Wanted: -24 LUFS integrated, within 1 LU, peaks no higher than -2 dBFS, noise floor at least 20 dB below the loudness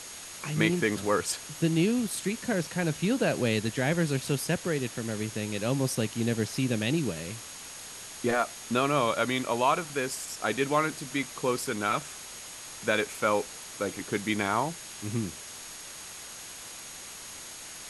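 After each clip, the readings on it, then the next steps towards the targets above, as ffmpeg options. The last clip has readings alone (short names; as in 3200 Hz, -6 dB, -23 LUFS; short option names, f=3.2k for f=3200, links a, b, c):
steady tone 6600 Hz; tone level -48 dBFS; noise floor -43 dBFS; noise floor target -49 dBFS; loudness -29.0 LUFS; peak -9.5 dBFS; loudness target -24.0 LUFS
-> -af "bandreject=f=6.6k:w=30"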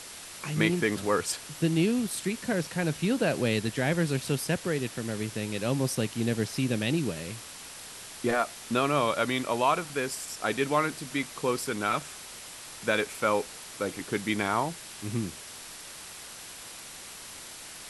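steady tone none; noise floor -44 dBFS; noise floor target -49 dBFS
-> -af "afftdn=nr=6:nf=-44"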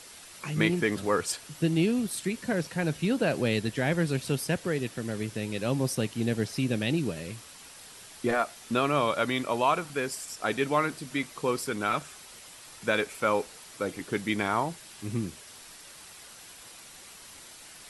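noise floor -49 dBFS; loudness -29.0 LUFS; peak -9.5 dBFS; loudness target -24.0 LUFS
-> -af "volume=5dB"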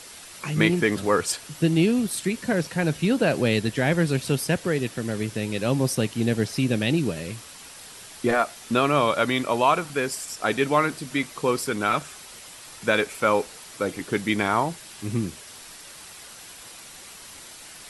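loudness -24.0 LUFS; peak -4.5 dBFS; noise floor -44 dBFS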